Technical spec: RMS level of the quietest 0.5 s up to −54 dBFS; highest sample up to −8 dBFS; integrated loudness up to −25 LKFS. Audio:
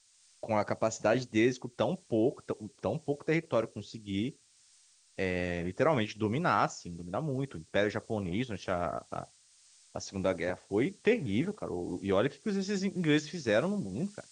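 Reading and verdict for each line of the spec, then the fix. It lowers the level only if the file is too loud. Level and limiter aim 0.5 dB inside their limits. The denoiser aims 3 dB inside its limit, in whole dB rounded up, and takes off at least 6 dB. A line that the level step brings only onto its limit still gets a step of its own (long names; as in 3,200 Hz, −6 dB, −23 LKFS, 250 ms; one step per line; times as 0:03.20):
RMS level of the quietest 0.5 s −64 dBFS: in spec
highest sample −13.5 dBFS: in spec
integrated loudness −32.0 LKFS: in spec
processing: no processing needed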